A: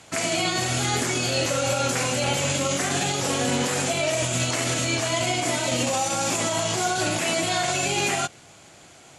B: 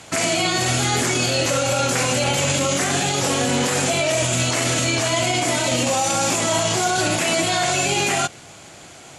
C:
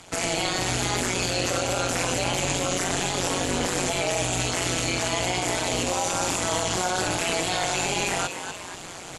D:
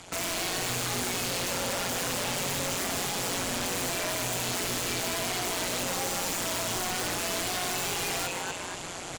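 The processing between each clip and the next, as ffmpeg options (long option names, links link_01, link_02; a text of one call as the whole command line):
ffmpeg -i in.wav -af "alimiter=limit=-18dB:level=0:latency=1:release=31,volume=7dB" out.wav
ffmpeg -i in.wav -filter_complex "[0:a]tremolo=f=180:d=0.947,asplit=4[link_01][link_02][link_03][link_04];[link_02]adelay=240,afreqshift=120,volume=-10dB[link_05];[link_03]adelay=480,afreqshift=240,volume=-20.5dB[link_06];[link_04]adelay=720,afreqshift=360,volume=-30.9dB[link_07];[link_01][link_05][link_06][link_07]amix=inputs=4:normalize=0,areverse,acompressor=mode=upward:threshold=-26dB:ratio=2.5,areverse,volume=-2dB" out.wav
ffmpeg -i in.wav -af "aeval=exprs='0.0562*(abs(mod(val(0)/0.0562+3,4)-2)-1)':channel_layout=same,aecho=1:1:152:0.316" out.wav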